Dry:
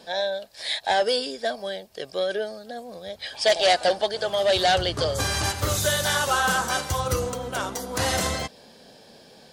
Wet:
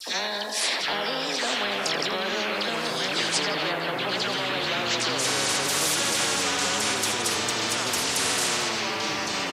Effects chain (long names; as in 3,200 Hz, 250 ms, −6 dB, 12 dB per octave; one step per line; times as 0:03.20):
source passing by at 0:02.17, 19 m/s, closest 9.7 metres
high-pass filter 230 Hz 24 dB per octave
treble cut that deepens with the level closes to 1,100 Hz, closed at −29 dBFS
in parallel at +1 dB: brickwall limiter −30 dBFS, peak gain reduction 12 dB
on the sum: all-pass dispersion lows, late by 74 ms, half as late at 1,700 Hz
delay with pitch and tempo change per echo 700 ms, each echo −4 semitones, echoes 3, each echo −6 dB
bit-depth reduction 12 bits, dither none
on a send: tape delay 82 ms, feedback 64%, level −11.5 dB, low-pass 3,400 Hz
on the sum: downsampling to 32,000 Hz
every bin compressed towards the loudest bin 4 to 1
level +3.5 dB